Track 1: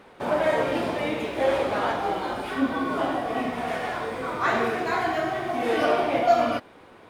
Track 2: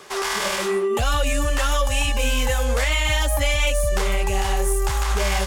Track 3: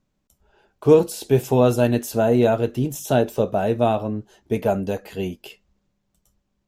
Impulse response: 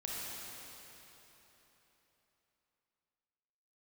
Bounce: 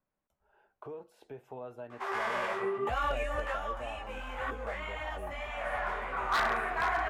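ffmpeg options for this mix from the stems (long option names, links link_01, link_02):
-filter_complex "[0:a]equalizer=frequency=410:width_type=o:width=1.6:gain=-12.5,adelay=1900,volume=1.5dB[link_01];[1:a]flanger=delay=16:depth=4.3:speed=1.9,adelay=1900,volume=-2dB,afade=type=out:start_time=3.41:duration=0.21:silence=0.446684[link_02];[2:a]alimiter=limit=-10.5dB:level=0:latency=1:release=482,acompressor=threshold=-39dB:ratio=2,volume=-5.5dB,asplit=2[link_03][link_04];[link_04]apad=whole_len=396880[link_05];[link_01][link_05]sidechaincompress=threshold=-55dB:ratio=10:attack=29:release=255[link_06];[link_06][link_02][link_03]amix=inputs=3:normalize=0,acrossover=split=510 2200:gain=0.224 1 0.0708[link_07][link_08][link_09];[link_07][link_08][link_09]amix=inputs=3:normalize=0,aeval=exprs='0.0794*(abs(mod(val(0)/0.0794+3,4)-2)-1)':channel_layout=same"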